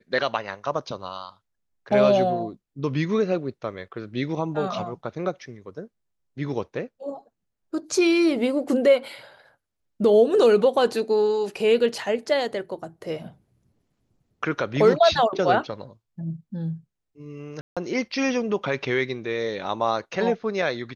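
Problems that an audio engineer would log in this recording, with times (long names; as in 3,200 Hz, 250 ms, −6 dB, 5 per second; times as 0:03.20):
0:17.61–0:17.77: drop-out 156 ms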